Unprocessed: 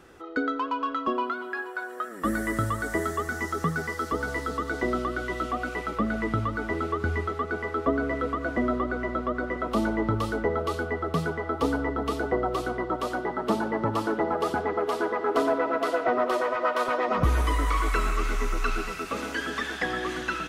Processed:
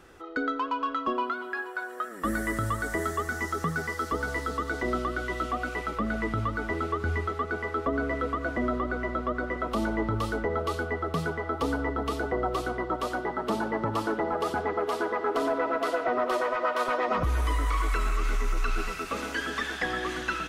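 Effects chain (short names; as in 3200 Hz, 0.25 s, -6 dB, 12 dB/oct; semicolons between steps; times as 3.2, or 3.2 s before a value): low shelf 71 Hz +9 dB; limiter -16 dBFS, peak gain reduction 8 dB; low shelf 430 Hz -4 dB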